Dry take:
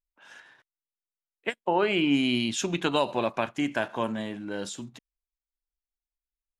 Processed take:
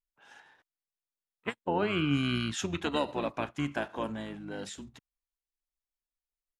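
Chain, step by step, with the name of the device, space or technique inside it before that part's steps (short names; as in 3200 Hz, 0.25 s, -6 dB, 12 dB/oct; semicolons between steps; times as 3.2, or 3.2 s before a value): octave pedal (harmoniser -12 st -6 dB); gain -6 dB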